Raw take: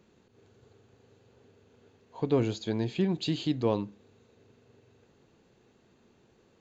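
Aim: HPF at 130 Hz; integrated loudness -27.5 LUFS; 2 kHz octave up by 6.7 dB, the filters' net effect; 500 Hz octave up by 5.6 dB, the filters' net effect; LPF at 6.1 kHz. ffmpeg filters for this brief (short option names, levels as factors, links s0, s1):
-af "highpass=130,lowpass=6100,equalizer=f=500:t=o:g=6.5,equalizer=f=2000:t=o:g=8.5,volume=0.944"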